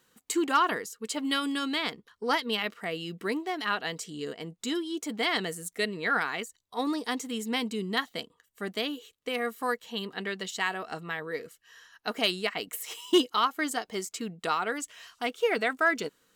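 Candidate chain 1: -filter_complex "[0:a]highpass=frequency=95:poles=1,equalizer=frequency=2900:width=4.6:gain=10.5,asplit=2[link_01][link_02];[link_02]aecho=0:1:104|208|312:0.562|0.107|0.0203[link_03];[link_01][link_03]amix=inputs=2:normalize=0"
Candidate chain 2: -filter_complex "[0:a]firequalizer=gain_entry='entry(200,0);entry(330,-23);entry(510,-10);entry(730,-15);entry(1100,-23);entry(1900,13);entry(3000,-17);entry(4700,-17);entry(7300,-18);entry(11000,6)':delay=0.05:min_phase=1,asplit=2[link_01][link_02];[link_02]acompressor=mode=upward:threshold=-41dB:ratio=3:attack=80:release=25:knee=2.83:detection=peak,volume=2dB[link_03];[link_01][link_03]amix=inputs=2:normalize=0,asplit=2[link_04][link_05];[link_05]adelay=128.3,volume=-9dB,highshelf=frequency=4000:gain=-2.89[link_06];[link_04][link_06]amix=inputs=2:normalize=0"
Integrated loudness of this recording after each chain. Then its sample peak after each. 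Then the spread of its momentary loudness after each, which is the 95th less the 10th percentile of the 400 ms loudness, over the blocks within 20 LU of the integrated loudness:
−27.0, −21.5 LKFS; −8.0, −3.5 dBFS; 11, 14 LU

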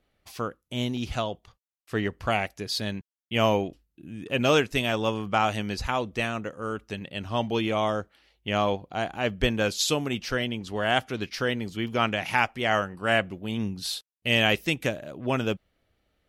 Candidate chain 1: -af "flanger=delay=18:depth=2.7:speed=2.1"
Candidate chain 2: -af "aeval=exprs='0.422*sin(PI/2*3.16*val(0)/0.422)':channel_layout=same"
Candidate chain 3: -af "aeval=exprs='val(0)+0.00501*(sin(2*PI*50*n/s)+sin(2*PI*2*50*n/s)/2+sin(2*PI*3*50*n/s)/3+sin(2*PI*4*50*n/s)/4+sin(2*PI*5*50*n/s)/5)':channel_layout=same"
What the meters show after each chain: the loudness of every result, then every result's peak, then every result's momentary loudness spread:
−30.5, −16.0, −27.5 LKFS; −11.0, −7.5, −7.5 dBFS; 10, 8, 11 LU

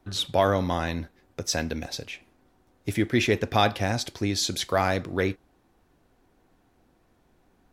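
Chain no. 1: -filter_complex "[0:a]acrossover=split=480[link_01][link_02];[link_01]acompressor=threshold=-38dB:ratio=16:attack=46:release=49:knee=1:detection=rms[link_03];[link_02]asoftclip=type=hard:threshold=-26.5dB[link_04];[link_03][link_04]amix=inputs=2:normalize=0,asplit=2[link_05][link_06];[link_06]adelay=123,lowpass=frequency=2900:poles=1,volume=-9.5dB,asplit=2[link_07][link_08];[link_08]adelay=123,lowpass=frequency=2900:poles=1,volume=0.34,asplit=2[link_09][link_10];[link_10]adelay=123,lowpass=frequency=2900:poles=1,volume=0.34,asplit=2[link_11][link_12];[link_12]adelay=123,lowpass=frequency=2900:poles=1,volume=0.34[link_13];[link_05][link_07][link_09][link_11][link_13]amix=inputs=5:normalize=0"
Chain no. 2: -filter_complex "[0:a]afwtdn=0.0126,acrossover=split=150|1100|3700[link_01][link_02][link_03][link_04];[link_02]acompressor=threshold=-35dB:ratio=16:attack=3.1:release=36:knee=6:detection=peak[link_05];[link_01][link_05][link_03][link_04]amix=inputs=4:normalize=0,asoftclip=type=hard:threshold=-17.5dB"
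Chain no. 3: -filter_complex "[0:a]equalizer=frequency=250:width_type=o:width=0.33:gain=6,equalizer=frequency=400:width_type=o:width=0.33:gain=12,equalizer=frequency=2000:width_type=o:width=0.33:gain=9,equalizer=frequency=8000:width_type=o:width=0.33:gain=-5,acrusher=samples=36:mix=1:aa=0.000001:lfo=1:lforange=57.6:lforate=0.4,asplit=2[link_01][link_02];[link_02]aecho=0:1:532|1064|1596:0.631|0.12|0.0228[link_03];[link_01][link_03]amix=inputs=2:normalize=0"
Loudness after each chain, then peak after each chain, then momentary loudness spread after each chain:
−31.5, −30.5, −22.0 LKFS; −18.5, −17.5, −4.5 dBFS; 11, 11, 16 LU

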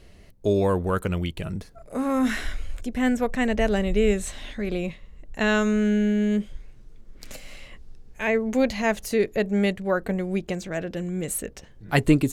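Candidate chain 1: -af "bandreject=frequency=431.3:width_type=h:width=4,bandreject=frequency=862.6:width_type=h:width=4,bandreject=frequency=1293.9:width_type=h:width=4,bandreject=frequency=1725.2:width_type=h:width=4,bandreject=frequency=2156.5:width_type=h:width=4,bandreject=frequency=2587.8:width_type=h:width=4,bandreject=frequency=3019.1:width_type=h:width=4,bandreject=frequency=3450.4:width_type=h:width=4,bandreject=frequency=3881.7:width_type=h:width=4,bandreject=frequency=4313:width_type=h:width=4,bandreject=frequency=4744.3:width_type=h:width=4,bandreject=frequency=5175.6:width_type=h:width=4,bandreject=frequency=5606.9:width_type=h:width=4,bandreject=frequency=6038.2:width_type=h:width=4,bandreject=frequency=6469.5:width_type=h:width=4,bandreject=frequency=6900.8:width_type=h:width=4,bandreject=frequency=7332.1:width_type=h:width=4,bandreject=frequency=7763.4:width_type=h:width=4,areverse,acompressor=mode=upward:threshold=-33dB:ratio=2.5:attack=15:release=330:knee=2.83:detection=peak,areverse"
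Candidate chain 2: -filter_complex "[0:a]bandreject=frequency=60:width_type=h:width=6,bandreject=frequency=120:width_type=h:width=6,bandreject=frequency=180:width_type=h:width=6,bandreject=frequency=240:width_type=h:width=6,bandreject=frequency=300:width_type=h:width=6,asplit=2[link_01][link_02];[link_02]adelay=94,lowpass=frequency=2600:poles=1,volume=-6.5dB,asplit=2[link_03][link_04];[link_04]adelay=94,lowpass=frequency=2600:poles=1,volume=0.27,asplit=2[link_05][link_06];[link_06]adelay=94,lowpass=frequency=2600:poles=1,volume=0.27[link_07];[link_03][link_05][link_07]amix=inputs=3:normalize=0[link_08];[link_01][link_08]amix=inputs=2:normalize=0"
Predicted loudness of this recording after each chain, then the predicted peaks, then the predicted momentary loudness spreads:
−25.0, −24.5 LKFS; −6.0, −6.0 dBFS; 15, 15 LU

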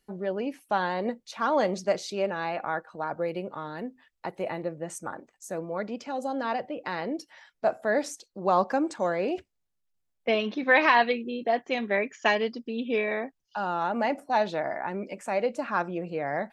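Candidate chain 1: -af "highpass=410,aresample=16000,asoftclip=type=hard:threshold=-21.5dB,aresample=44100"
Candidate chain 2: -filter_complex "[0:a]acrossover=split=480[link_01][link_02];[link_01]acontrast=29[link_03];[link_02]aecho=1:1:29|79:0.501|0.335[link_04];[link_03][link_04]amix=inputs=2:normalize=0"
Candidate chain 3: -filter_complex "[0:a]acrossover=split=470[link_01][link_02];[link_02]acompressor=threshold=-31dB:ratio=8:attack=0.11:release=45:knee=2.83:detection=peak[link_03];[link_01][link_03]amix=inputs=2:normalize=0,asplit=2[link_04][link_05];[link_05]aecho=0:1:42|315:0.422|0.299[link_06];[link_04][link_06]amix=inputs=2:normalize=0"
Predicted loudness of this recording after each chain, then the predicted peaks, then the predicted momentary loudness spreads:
−31.5, −26.0, −32.5 LKFS; −19.5, −5.5, −17.0 dBFS; 11, 11, 8 LU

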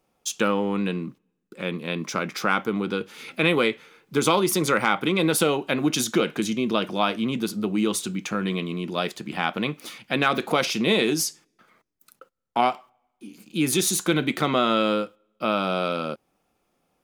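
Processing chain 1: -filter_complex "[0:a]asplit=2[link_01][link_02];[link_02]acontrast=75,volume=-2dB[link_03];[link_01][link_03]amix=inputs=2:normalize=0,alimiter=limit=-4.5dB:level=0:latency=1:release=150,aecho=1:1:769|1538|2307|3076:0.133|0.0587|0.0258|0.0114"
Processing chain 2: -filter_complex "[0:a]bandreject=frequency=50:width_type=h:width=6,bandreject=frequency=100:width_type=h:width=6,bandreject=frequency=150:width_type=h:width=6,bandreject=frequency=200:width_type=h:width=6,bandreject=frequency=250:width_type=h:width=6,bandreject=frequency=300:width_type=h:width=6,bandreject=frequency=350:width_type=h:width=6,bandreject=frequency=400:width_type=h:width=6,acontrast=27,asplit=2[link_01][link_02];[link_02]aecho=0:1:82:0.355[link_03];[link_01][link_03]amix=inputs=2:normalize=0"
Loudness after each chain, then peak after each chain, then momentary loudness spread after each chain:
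−17.5, −19.5 LKFS; −3.5, −1.0 dBFS; 17, 10 LU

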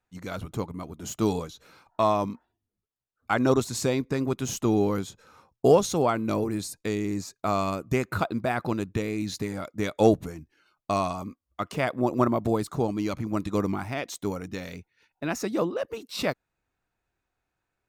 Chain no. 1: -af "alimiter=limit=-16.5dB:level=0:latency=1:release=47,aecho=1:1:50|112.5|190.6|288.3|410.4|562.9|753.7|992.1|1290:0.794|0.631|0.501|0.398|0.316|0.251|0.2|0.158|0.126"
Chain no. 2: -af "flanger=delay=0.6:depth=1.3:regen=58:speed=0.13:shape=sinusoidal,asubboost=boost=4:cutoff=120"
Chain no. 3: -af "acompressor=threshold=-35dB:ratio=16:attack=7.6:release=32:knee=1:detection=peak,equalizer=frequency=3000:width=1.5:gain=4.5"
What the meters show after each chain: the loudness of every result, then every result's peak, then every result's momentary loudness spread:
−26.0, −32.5, −37.5 LKFS; −9.5, −12.0, −21.0 dBFS; 11, 13, 7 LU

